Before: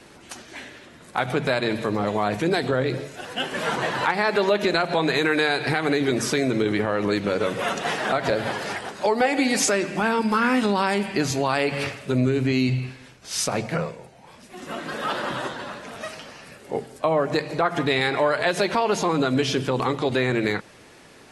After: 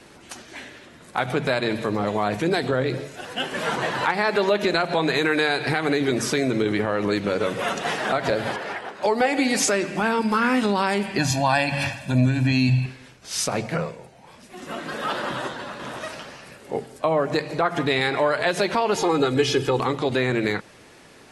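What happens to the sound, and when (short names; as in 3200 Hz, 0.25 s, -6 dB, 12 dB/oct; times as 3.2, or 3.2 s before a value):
8.56–9.03 tone controls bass -9 dB, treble -13 dB
11.18–12.86 comb 1.2 ms, depth 94%
15.28–15.84 echo throw 0.51 s, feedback 15%, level -7 dB
18.95–19.79 comb 2.4 ms, depth 74%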